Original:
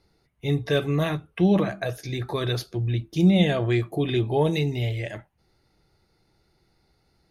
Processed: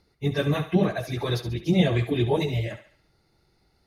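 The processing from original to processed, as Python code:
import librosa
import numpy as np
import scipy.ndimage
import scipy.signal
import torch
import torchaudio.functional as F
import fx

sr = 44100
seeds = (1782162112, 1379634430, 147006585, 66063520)

y = fx.stretch_vocoder_free(x, sr, factor=0.53)
y = fx.echo_thinned(y, sr, ms=69, feedback_pct=45, hz=480.0, wet_db=-10.5)
y = F.gain(torch.from_numpy(y), 3.0).numpy()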